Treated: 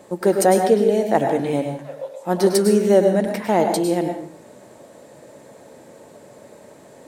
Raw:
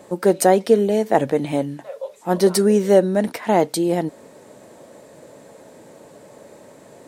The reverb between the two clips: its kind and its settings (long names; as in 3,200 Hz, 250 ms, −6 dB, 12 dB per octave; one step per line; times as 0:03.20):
dense smooth reverb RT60 0.54 s, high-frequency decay 0.75×, pre-delay 90 ms, DRR 4.5 dB
level −1.5 dB